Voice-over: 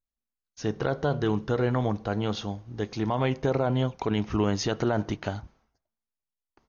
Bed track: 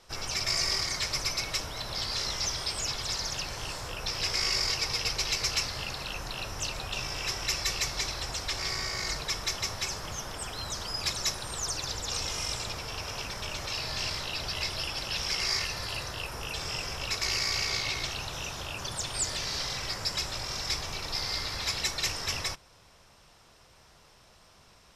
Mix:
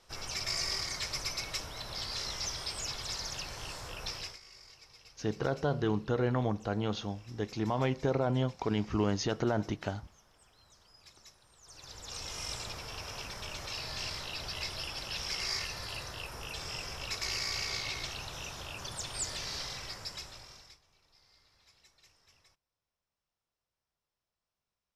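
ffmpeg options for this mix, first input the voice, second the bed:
-filter_complex "[0:a]adelay=4600,volume=-4.5dB[a];[1:a]volume=15.5dB,afade=t=out:st=4.08:d=0.31:silence=0.0891251,afade=t=in:st=11.63:d=0.89:silence=0.0891251,afade=t=out:st=19.53:d=1.26:silence=0.0398107[b];[a][b]amix=inputs=2:normalize=0"

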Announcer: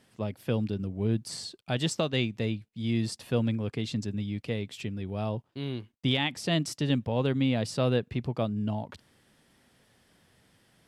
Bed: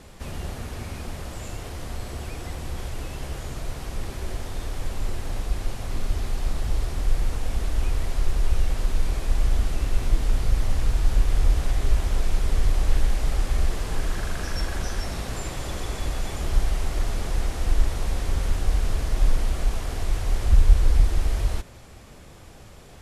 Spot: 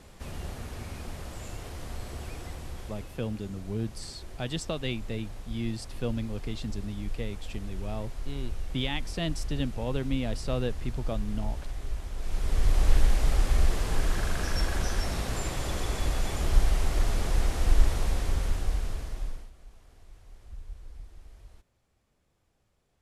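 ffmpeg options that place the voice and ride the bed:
-filter_complex "[0:a]adelay=2700,volume=-4.5dB[a];[1:a]volume=7.5dB,afade=t=out:st=2.33:d=0.89:silence=0.398107,afade=t=in:st=12.16:d=0.7:silence=0.237137,afade=t=out:st=17.89:d=1.62:silence=0.0473151[b];[a][b]amix=inputs=2:normalize=0"

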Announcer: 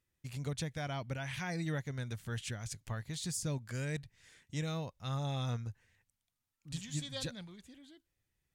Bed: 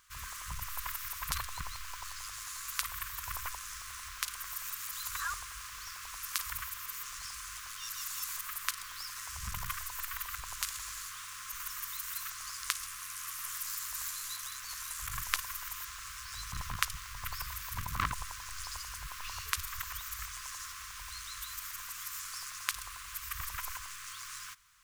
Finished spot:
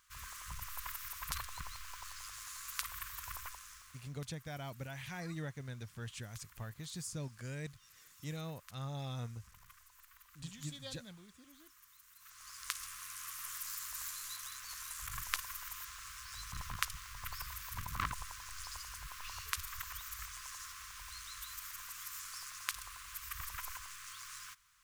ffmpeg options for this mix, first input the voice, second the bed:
-filter_complex "[0:a]adelay=3700,volume=-5.5dB[a];[1:a]volume=13dB,afade=t=out:st=3.21:d=0.93:silence=0.133352,afade=t=in:st=12.18:d=0.66:silence=0.125893[b];[a][b]amix=inputs=2:normalize=0"

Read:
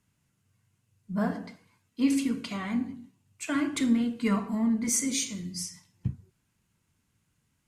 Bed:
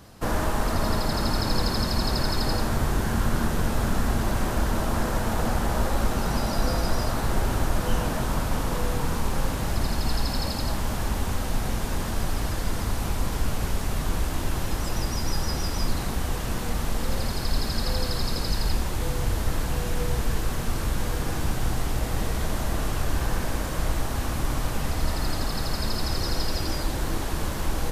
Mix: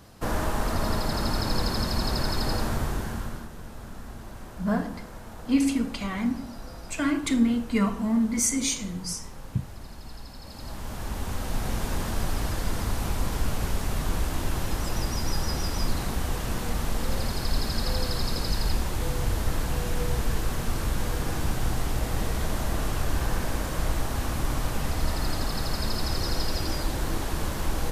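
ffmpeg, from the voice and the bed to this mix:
-filter_complex "[0:a]adelay=3500,volume=2.5dB[a];[1:a]volume=13.5dB,afade=t=out:st=2.67:d=0.81:silence=0.188365,afade=t=in:st=10.42:d=1.4:silence=0.16788[b];[a][b]amix=inputs=2:normalize=0"

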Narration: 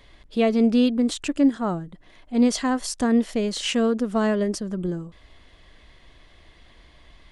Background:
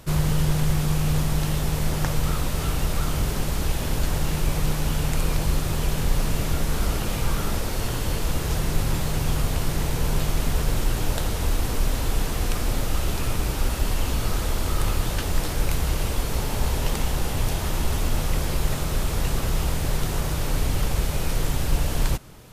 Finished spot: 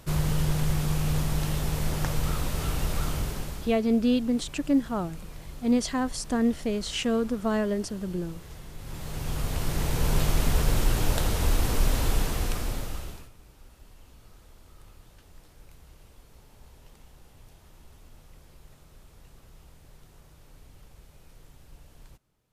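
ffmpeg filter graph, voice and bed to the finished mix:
-filter_complex "[0:a]adelay=3300,volume=-4.5dB[a];[1:a]volume=15dB,afade=t=out:st=3.06:d=0.73:silence=0.16788,afade=t=in:st=8.78:d=1.42:silence=0.112202,afade=t=out:st=12.05:d=1.25:silence=0.0398107[b];[a][b]amix=inputs=2:normalize=0"

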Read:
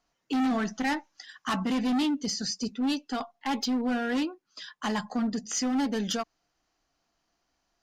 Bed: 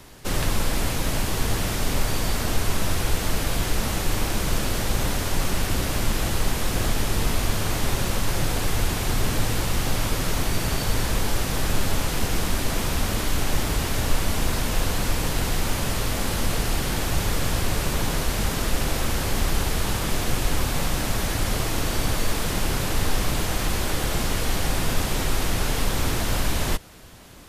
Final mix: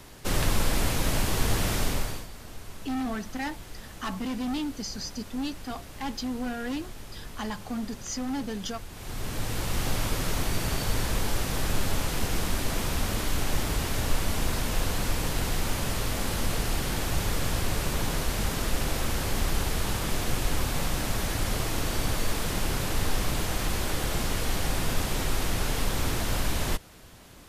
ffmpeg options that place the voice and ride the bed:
-filter_complex "[0:a]adelay=2550,volume=-4.5dB[a];[1:a]volume=13.5dB,afade=t=out:st=1.78:d=0.49:silence=0.133352,afade=t=in:st=8.9:d=0.94:silence=0.177828[b];[a][b]amix=inputs=2:normalize=0"

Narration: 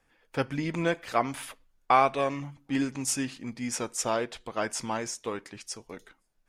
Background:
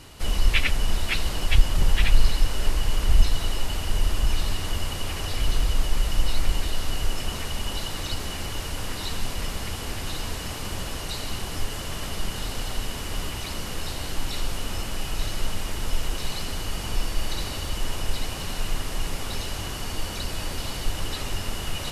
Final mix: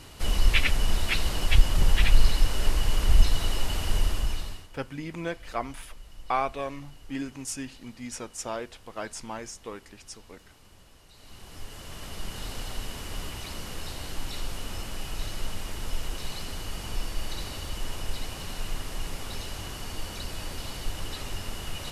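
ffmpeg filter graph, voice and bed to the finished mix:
-filter_complex "[0:a]adelay=4400,volume=-5.5dB[a];[1:a]volume=17dB,afade=t=out:st=3.95:d=0.73:silence=0.0749894,afade=t=in:st=11.13:d=1.35:silence=0.125893[b];[a][b]amix=inputs=2:normalize=0"

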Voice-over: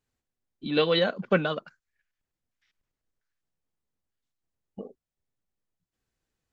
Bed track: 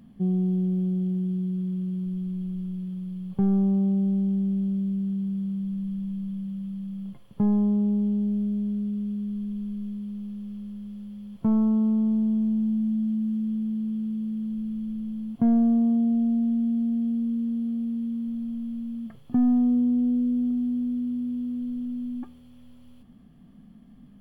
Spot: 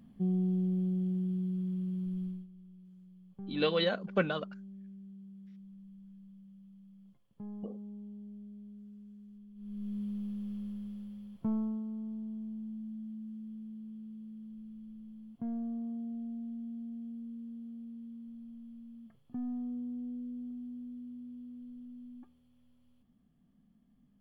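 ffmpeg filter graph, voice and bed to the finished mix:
-filter_complex "[0:a]adelay=2850,volume=-6dB[a];[1:a]volume=13dB,afade=t=out:st=2.24:d=0.23:silence=0.158489,afade=t=in:st=9.55:d=0.45:silence=0.112202,afade=t=out:st=10.67:d=1.17:silence=0.199526[b];[a][b]amix=inputs=2:normalize=0"

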